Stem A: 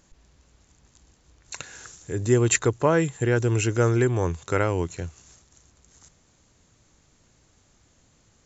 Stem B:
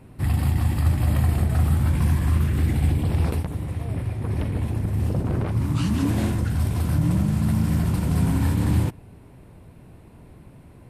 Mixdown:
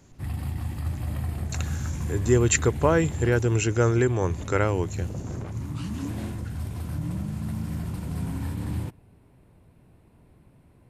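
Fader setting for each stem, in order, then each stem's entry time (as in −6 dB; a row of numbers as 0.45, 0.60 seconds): −0.5, −9.5 decibels; 0.00, 0.00 seconds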